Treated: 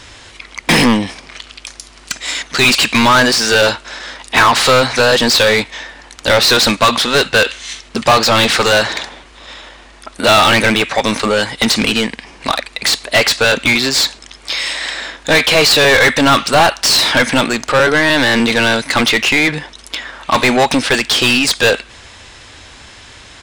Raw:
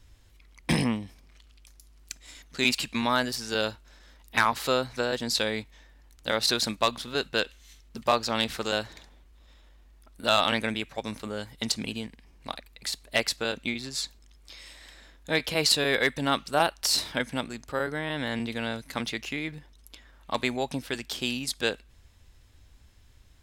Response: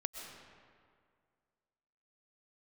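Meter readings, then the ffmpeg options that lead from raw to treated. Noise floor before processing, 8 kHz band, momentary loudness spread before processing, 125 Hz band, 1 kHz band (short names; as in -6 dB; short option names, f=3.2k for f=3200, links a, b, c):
-56 dBFS, +16.0 dB, 15 LU, +14.5 dB, +16.5 dB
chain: -filter_complex "[0:a]aresample=22050,aresample=44100,asplit=2[a][b];[b]highpass=f=720:p=1,volume=29dB,asoftclip=type=tanh:threshold=-10.5dB[c];[a][c]amix=inputs=2:normalize=0,lowpass=f=4.3k:p=1,volume=-6dB,volume=8.5dB"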